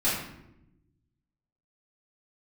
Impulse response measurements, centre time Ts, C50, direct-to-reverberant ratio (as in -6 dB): 55 ms, 2.0 dB, -11.0 dB